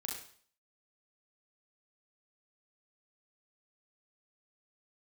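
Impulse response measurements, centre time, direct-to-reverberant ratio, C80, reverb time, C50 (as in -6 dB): 41 ms, -1.5 dB, 7.5 dB, 0.50 s, 3.5 dB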